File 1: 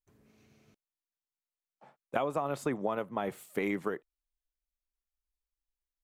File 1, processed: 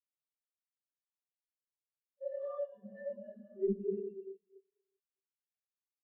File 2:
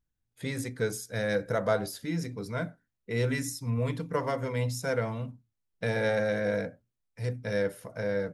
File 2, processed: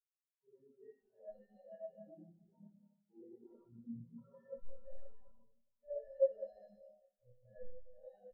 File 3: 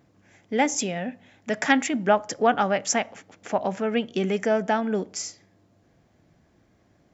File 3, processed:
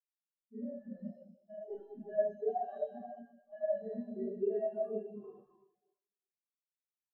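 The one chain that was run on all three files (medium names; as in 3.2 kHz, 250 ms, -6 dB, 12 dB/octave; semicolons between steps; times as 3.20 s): harmonic-percussive separation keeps harmonic; high-pass 770 Hz 6 dB/octave; peaking EQ 5.8 kHz +7.5 dB 1.9 oct; band-stop 1.3 kHz, Q 26; comb 5.2 ms, depth 75%; compression 6:1, threshold -44 dBFS; sample-and-hold 19×; thinning echo 70 ms, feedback 83%, high-pass 1 kHz, level -7 dB; Schroeder reverb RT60 3.6 s, combs from 26 ms, DRR -8.5 dB; spectral contrast expander 4:1; trim +3 dB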